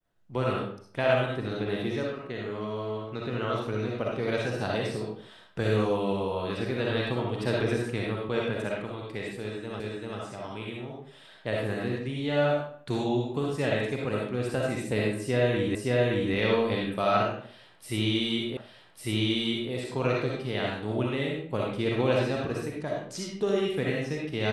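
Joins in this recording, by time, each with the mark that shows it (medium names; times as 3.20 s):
9.80 s: repeat of the last 0.39 s
15.75 s: repeat of the last 0.57 s
18.57 s: repeat of the last 1.15 s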